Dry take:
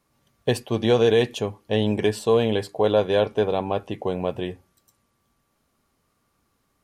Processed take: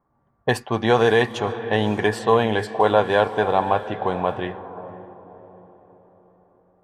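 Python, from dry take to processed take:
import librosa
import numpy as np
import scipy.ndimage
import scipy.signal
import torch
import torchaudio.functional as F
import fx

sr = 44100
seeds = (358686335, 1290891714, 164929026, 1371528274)

y = fx.band_shelf(x, sr, hz=1200.0, db=10.0, octaves=1.7)
y = fx.echo_diffused(y, sr, ms=545, feedback_pct=45, wet_db=-13)
y = fx.env_lowpass(y, sr, base_hz=710.0, full_db=-17.0)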